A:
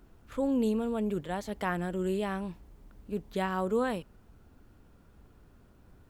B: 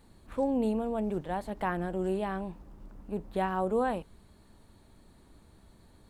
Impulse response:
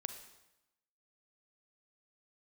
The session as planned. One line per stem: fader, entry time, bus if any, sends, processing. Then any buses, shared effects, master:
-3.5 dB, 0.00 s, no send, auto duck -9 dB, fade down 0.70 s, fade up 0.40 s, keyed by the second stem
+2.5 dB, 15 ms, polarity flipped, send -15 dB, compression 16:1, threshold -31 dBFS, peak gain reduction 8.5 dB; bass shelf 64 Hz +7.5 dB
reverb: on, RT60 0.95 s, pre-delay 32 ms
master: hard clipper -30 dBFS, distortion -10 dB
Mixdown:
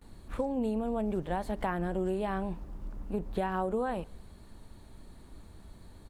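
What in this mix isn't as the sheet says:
stem A -3.5 dB -> -11.0 dB; master: missing hard clipper -30 dBFS, distortion -10 dB

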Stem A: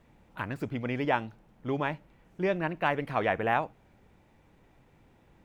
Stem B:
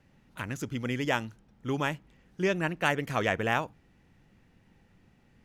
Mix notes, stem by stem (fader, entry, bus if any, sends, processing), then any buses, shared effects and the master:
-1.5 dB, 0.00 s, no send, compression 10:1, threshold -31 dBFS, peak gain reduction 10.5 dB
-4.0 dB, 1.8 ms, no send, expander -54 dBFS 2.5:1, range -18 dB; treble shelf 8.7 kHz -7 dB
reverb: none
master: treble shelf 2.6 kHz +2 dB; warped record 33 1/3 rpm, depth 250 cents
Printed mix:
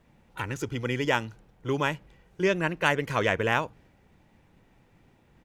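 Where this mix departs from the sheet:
stem B -4.0 dB -> +2.5 dB; master: missing warped record 33 1/3 rpm, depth 250 cents

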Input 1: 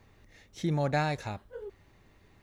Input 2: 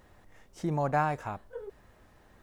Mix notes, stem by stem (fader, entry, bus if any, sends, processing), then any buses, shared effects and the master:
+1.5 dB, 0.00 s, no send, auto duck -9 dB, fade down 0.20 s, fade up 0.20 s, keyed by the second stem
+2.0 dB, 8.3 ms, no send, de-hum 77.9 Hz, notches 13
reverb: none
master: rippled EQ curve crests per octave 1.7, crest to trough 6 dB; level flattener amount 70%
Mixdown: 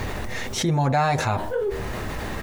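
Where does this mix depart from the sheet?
stem 1 +1.5 dB -> +10.5 dB; master: missing rippled EQ curve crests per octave 1.7, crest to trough 6 dB

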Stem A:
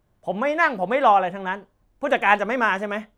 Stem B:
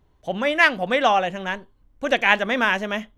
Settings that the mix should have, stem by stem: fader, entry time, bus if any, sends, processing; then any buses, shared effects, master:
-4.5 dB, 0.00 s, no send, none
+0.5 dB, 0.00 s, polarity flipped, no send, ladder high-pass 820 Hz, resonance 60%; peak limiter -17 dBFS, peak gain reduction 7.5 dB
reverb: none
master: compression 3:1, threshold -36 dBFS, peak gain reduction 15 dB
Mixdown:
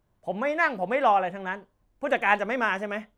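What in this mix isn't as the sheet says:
stem B +0.5 dB -> -11.0 dB; master: missing compression 3:1, threshold -36 dBFS, peak gain reduction 15 dB

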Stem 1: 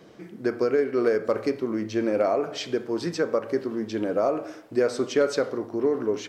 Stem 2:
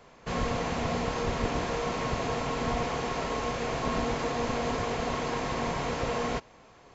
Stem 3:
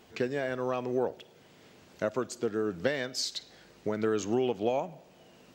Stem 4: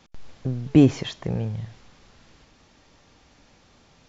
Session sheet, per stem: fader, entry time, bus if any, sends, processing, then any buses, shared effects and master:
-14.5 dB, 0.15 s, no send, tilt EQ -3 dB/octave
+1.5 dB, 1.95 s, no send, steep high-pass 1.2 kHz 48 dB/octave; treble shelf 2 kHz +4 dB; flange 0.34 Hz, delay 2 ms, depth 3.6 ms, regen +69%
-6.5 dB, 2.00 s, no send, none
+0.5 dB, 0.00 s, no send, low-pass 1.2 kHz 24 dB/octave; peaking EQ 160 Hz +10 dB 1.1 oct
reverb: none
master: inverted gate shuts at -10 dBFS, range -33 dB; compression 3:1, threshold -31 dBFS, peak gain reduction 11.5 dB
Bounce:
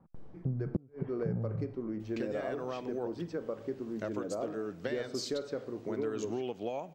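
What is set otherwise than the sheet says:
stem 2: muted; stem 4 +0.5 dB -> -8.5 dB

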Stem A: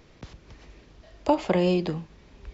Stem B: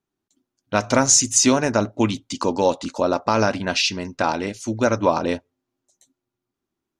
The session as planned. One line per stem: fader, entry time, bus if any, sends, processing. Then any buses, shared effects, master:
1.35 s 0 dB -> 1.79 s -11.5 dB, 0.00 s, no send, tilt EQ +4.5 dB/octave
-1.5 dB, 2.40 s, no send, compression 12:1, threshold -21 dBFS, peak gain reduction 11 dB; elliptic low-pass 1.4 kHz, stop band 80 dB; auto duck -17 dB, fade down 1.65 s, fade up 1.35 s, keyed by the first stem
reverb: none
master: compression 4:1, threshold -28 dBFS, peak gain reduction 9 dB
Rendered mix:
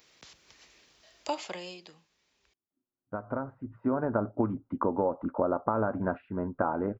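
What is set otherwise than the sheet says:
stem A 0.0 dB -> -7.5 dB; master: missing compression 4:1, threshold -28 dBFS, peak gain reduction 9 dB

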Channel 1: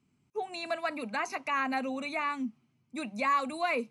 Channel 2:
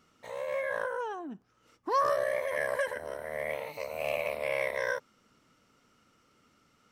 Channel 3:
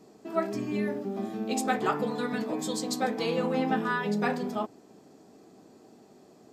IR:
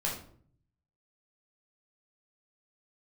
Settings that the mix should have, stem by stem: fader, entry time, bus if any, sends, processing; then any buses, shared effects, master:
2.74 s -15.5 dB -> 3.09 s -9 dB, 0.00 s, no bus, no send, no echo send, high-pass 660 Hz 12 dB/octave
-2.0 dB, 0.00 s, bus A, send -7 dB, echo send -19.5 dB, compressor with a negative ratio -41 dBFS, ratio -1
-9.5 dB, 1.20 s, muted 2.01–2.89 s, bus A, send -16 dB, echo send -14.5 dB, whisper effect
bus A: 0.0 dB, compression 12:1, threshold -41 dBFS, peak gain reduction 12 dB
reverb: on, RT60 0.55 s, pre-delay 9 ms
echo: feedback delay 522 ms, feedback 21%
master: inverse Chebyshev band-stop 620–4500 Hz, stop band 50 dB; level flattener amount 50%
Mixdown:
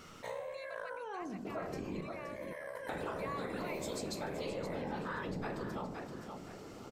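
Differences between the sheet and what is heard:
stem 1 -15.5 dB -> -23.5 dB; stem 2 -2.0 dB -> -13.5 dB; master: missing inverse Chebyshev band-stop 620–4500 Hz, stop band 50 dB

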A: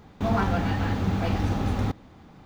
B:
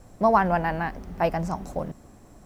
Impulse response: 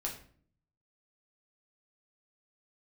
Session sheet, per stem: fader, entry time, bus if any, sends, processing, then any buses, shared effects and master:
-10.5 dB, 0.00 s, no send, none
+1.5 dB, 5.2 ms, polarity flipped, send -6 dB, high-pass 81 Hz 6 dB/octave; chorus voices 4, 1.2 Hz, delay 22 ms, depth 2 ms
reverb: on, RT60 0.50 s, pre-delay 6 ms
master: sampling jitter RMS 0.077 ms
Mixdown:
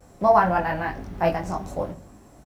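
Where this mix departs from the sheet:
stem A -10.5 dB -> -19.5 dB; master: missing sampling jitter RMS 0.077 ms

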